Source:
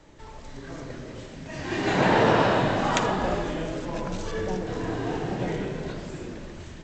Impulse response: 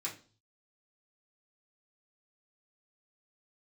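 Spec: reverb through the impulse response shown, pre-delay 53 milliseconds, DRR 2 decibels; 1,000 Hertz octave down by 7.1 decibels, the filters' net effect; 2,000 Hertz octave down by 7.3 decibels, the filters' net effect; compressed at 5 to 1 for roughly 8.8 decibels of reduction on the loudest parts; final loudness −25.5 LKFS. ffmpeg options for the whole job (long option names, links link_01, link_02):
-filter_complex "[0:a]equalizer=frequency=1000:width_type=o:gain=-8,equalizer=frequency=2000:width_type=o:gain=-6.5,acompressor=threshold=-28dB:ratio=5,asplit=2[link_01][link_02];[1:a]atrim=start_sample=2205,adelay=53[link_03];[link_02][link_03]afir=irnorm=-1:irlink=0,volume=-3dB[link_04];[link_01][link_04]amix=inputs=2:normalize=0,volume=6.5dB"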